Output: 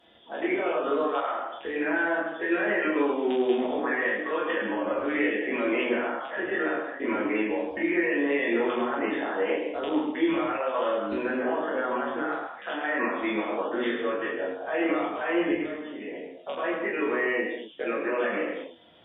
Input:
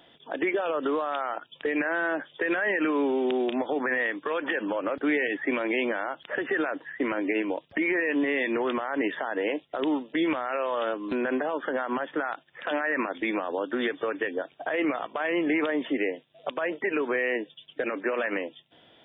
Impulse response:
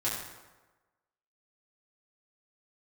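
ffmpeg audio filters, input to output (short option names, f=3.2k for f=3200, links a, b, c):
-filter_complex "[0:a]asettb=1/sr,asplit=3[a][b][c];[a]atrim=end=15.514[d];[b]atrim=start=15.51:end=16.11,asetpts=PTS-STARTPTS,afade=t=in:d=0.004:c=qsin,afade=t=out:st=0.596:d=0.004:c=qsin,acrossover=split=150[e][f];[f]acompressor=threshold=-43dB:ratio=2[g];[e][g]amix=inputs=2:normalize=0[h];[c]atrim=start=16.106[i];[d][h]acrossfade=d=0.004:c1=hsin:c2=qsin[j];[j][i]acrossfade=d=0.004:c1=qsin:c2=hsin[k];[1:a]atrim=start_sample=2205,afade=t=out:st=0.23:d=0.01,atrim=end_sample=10584,asetrate=28665,aresample=44100[l];[k][l]afir=irnorm=-1:irlink=0,volume=-9dB"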